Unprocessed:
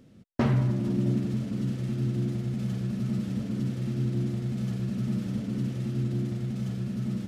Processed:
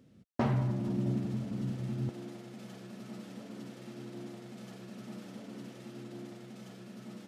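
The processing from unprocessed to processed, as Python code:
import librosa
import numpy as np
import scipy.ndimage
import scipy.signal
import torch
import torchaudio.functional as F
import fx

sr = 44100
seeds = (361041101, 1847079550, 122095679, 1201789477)

y = fx.highpass(x, sr, hz=fx.steps((0.0, 59.0), (2.09, 350.0)), slope=12)
y = fx.dynamic_eq(y, sr, hz=800.0, q=1.6, threshold_db=-54.0, ratio=4.0, max_db=7)
y = y * 10.0 ** (-6.0 / 20.0)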